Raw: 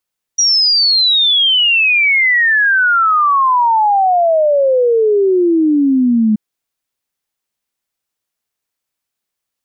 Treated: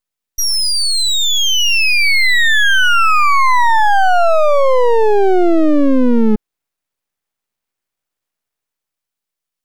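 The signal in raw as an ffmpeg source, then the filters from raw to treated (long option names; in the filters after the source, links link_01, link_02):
-f lavfi -i "aevalsrc='0.376*clip(min(t,5.98-t)/0.01,0,1)*sin(2*PI*5800*5.98/log(210/5800)*(exp(log(210/5800)*t/5.98)-1))':duration=5.98:sample_rate=44100"
-filter_complex "[0:a]acrossover=split=2600[link_01][link_02];[link_01]dynaudnorm=framelen=100:gausssize=21:maxgain=6dB[link_03];[link_03][link_02]amix=inputs=2:normalize=0,aeval=exprs='max(val(0),0)':channel_layout=same"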